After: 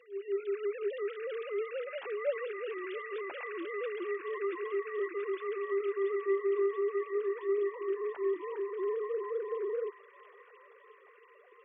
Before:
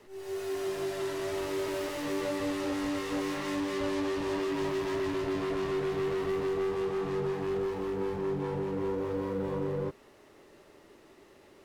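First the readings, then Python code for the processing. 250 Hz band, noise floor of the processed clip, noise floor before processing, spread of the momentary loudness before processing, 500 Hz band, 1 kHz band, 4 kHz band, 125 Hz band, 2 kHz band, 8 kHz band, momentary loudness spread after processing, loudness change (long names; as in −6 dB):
−10.0 dB, −59 dBFS, −57 dBFS, 3 LU, −0.5 dB, −5.0 dB, below −10 dB, below −40 dB, −2.0 dB, below −30 dB, 7 LU, −2.5 dB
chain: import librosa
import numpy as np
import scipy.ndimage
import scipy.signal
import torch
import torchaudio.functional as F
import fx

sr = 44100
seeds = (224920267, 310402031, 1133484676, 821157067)

p1 = fx.sine_speech(x, sr)
p2 = fx.dereverb_blind(p1, sr, rt60_s=0.63)
p3 = scipy.signal.sosfilt(scipy.signal.butter(2, 300.0, 'highpass', fs=sr, output='sos'), p2)
p4 = fx.high_shelf(p3, sr, hz=2700.0, db=8.0)
y = p4 + fx.echo_wet_highpass(p4, sr, ms=681, feedback_pct=70, hz=1700.0, wet_db=-5.5, dry=0)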